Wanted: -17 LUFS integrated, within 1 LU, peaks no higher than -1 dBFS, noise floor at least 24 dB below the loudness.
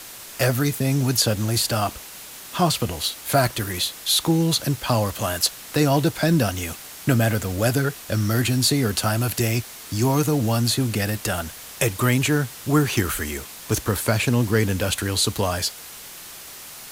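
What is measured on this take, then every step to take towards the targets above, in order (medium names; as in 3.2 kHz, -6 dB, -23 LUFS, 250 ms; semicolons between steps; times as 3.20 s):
noise floor -40 dBFS; noise floor target -46 dBFS; loudness -22.0 LUFS; peak level -6.5 dBFS; loudness target -17.0 LUFS
-> noise print and reduce 6 dB; trim +5 dB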